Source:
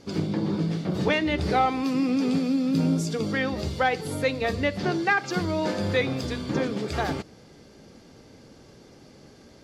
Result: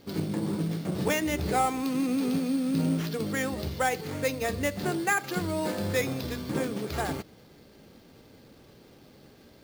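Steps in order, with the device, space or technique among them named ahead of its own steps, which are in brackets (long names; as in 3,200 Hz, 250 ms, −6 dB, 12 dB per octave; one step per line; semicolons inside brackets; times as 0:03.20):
early companding sampler (sample-rate reduction 8,900 Hz, jitter 0%; log-companded quantiser 6 bits)
level −3.5 dB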